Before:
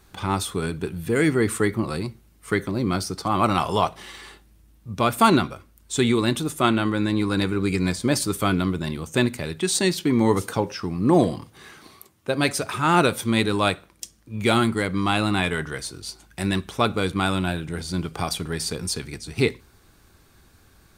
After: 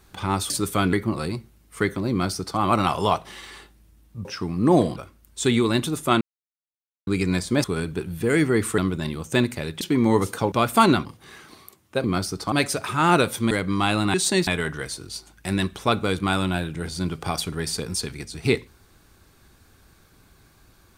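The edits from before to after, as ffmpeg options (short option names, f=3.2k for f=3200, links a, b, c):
-filter_complex "[0:a]asplit=17[a][b][c][d][e][f][g][h][i][j][k][l][m][n][o][p][q];[a]atrim=end=0.502[r];[b]atrim=start=8.168:end=8.602[s];[c]atrim=start=1.638:end=4.962[t];[d]atrim=start=10.668:end=11.382[u];[e]atrim=start=5.488:end=6.74,asetpts=PTS-STARTPTS,afade=t=out:st=1.248:d=0.004:c=hsin[v];[f]atrim=start=6.74:end=7.6,asetpts=PTS-STARTPTS,volume=0[w];[g]atrim=start=7.6:end=8.172,asetpts=PTS-STARTPTS,afade=t=in:d=0.004:c=hsin[x];[h]atrim=start=0.498:end=1.642[y];[i]atrim=start=8.598:end=9.632[z];[j]atrim=start=9.958:end=10.672[aa];[k]atrim=start=4.958:end=5.492[ab];[l]atrim=start=11.378:end=12.372[ac];[m]atrim=start=2.818:end=3.302[ad];[n]atrim=start=12.368:end=13.362[ae];[o]atrim=start=14.768:end=15.402[af];[p]atrim=start=9.628:end=9.962[ag];[q]atrim=start=15.398[ah];[r][s]acrossfade=d=0.004:c1=hsin:c2=hsin[ai];[ai][t]acrossfade=d=0.004:c1=hsin:c2=hsin[aj];[aj][u]acrossfade=d=0.004:c1=hsin:c2=hsin[ak];[v][w][x]concat=n=3:v=0:a=1[al];[ak][al]acrossfade=d=0.004:c1=hsin:c2=hsin[am];[am][y]acrossfade=d=0.004:c1=hsin:c2=hsin[an];[an][z]acrossfade=d=0.004:c1=hsin:c2=hsin[ao];[ao][aa]acrossfade=d=0.004:c1=hsin:c2=hsin[ap];[ap][ab]acrossfade=d=0.004:c1=hsin:c2=hsin[aq];[aq][ac]acrossfade=d=0.004:c1=hsin:c2=hsin[ar];[ar][ad]acrossfade=d=0.004:c1=hsin:c2=hsin[as];[as][ae]acrossfade=d=0.004:c1=hsin:c2=hsin[at];[at][af]acrossfade=d=0.004:c1=hsin:c2=hsin[au];[au][ag]acrossfade=d=0.004:c1=hsin:c2=hsin[av];[av][ah]acrossfade=d=0.004:c1=hsin:c2=hsin"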